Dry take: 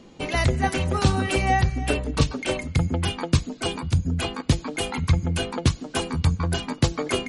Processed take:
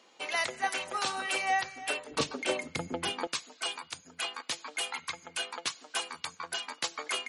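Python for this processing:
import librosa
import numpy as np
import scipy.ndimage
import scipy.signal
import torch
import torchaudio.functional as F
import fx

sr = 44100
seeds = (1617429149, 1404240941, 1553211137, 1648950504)

y = fx.highpass(x, sr, hz=fx.steps((0.0, 790.0), (2.11, 350.0), (3.27, 1000.0)), slope=12)
y = y * librosa.db_to_amplitude(-3.5)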